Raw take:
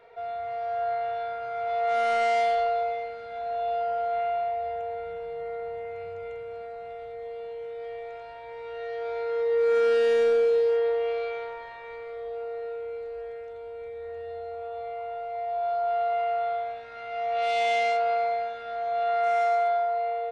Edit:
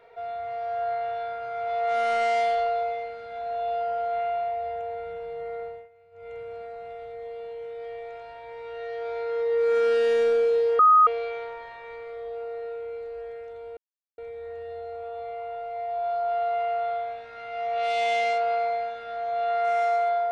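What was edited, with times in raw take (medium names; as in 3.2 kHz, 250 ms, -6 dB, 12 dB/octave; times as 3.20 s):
5.62–6.38 s: dip -20 dB, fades 0.27 s
10.79–11.07 s: bleep 1.25 kHz -12.5 dBFS
13.77 s: insert silence 0.41 s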